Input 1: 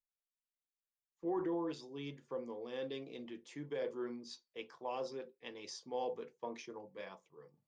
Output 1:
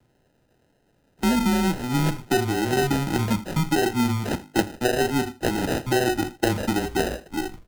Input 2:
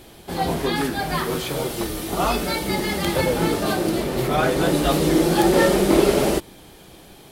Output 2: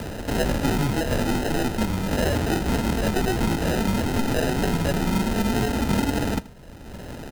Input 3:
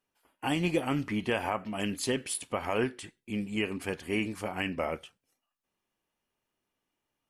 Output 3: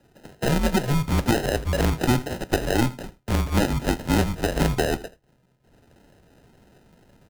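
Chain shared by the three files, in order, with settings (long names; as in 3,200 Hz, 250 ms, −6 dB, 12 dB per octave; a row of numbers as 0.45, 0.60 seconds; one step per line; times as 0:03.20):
band-splitting scrambler in four parts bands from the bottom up 4321
downsampling to 11,025 Hz
high-pass filter 160 Hz 24 dB per octave
dynamic equaliser 2,300 Hz, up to +5 dB, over −35 dBFS, Q 1.1
mains-hum notches 50/100/150/200/250/300/350 Hz
decimation without filtering 39×
tape wow and flutter 25 cents
speech leveller within 4 dB 0.5 s
single-tap delay 80 ms −20.5 dB
multiband upward and downward compressor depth 70%
loudness normalisation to −24 LKFS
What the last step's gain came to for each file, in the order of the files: +20.0, −3.0, +10.0 decibels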